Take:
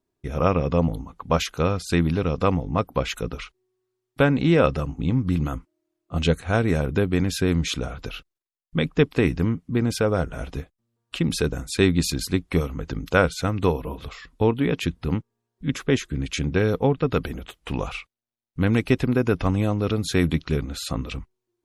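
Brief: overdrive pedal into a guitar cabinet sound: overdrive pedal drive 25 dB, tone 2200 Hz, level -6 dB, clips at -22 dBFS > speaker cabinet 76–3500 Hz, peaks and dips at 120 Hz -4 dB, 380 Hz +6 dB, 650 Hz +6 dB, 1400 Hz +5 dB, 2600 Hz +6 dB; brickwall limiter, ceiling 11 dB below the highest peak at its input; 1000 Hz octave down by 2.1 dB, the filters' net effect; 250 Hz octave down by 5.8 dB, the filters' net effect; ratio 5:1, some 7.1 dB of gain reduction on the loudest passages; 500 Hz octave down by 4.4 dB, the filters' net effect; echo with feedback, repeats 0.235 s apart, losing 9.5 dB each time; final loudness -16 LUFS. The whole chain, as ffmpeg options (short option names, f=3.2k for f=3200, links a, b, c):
-filter_complex "[0:a]equalizer=f=250:t=o:g=-7,equalizer=f=500:t=o:g=-7,equalizer=f=1k:t=o:g=-5,acompressor=threshold=-26dB:ratio=5,alimiter=level_in=1dB:limit=-24dB:level=0:latency=1,volume=-1dB,aecho=1:1:235|470|705|940:0.335|0.111|0.0365|0.012,asplit=2[a][b];[b]highpass=f=720:p=1,volume=25dB,asoftclip=type=tanh:threshold=-22dB[c];[a][c]amix=inputs=2:normalize=0,lowpass=f=2.2k:p=1,volume=-6dB,highpass=76,equalizer=f=120:t=q:w=4:g=-4,equalizer=f=380:t=q:w=4:g=6,equalizer=f=650:t=q:w=4:g=6,equalizer=f=1.4k:t=q:w=4:g=5,equalizer=f=2.6k:t=q:w=4:g=6,lowpass=f=3.5k:w=0.5412,lowpass=f=3.5k:w=1.3066,volume=14.5dB"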